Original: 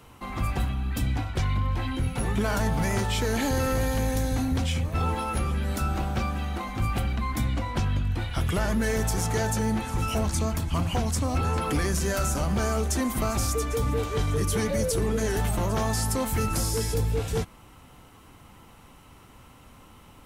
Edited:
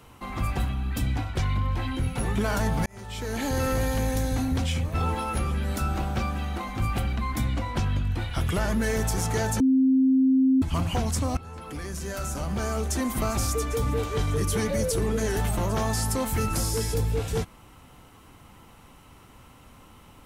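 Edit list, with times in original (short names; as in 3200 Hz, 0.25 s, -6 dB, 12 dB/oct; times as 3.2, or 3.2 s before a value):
2.86–3.64 fade in
9.6–10.62 bleep 263 Hz -16.5 dBFS
11.37–13.2 fade in, from -18.5 dB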